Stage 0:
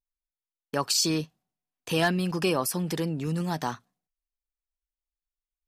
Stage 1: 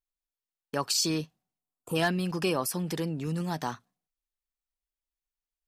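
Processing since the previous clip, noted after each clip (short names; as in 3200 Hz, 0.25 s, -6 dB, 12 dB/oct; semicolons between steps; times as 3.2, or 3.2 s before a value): spectral gain 1.59–1.96, 1400–6800 Hz -20 dB; gain -2.5 dB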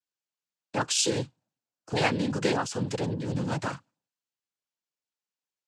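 noise vocoder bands 8; gain +2 dB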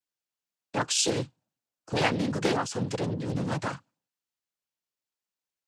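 Doppler distortion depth 0.48 ms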